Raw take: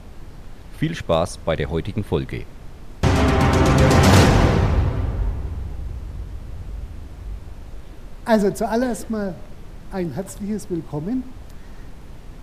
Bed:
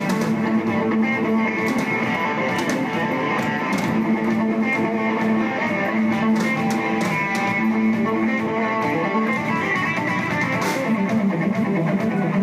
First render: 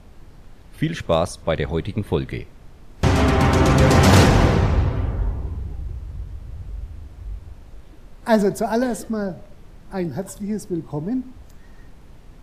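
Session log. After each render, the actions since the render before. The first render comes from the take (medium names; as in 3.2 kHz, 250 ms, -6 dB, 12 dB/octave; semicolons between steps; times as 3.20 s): noise print and reduce 6 dB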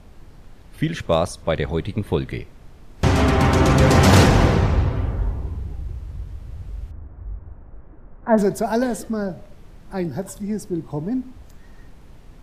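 6.91–8.38 s: low-pass 1.6 kHz 24 dB/octave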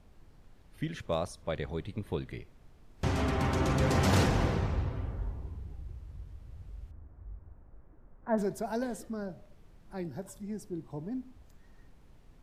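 trim -13 dB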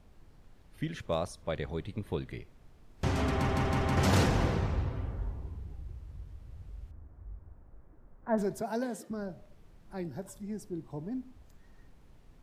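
3.33 s: stutter in place 0.16 s, 4 plays; 8.61–9.11 s: high-pass 140 Hz 24 dB/octave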